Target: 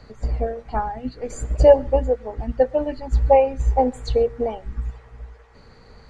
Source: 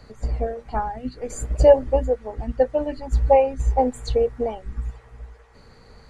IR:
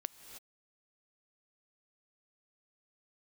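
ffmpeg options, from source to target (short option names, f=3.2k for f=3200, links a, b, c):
-filter_complex "[0:a]asplit=2[a][b];[1:a]atrim=start_sample=2205,afade=t=out:st=0.19:d=0.01,atrim=end_sample=8820,lowpass=7.6k[c];[b][c]afir=irnorm=-1:irlink=0,volume=7.5dB[d];[a][d]amix=inputs=2:normalize=0,volume=-7.5dB"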